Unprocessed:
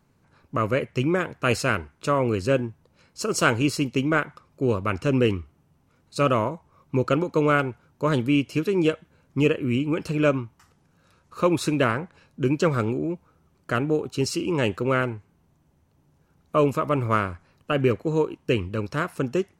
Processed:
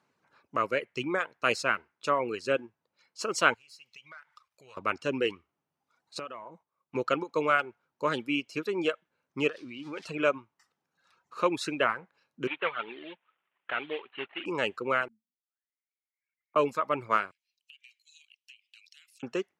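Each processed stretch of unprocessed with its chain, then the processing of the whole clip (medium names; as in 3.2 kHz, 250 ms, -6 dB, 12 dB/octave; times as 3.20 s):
3.54–4.77 s: amplifier tone stack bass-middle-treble 10-0-10 + compression 4:1, threshold -51 dBFS + waveshaping leveller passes 2
6.19–6.95 s: gate -55 dBFS, range -10 dB + compression, threshold -32 dBFS
9.49–10.06 s: zero-crossing glitches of -26 dBFS + low-pass 4.4 kHz + compression 12:1, threshold -24 dBFS
12.47–14.46 s: CVSD coder 16 kbps + tilt EQ +4.5 dB/octave
15.08–16.56 s: brick-wall FIR band-stop 320–1200 Hz + auto-wah 220–2700 Hz, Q 13, down, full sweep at -38.5 dBFS
17.31–19.23 s: steep high-pass 2.6 kHz + compression 12:1, threshold -47 dBFS
whole clip: frequency weighting A; reverb removal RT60 1.1 s; treble shelf 8.4 kHz -10 dB; trim -2 dB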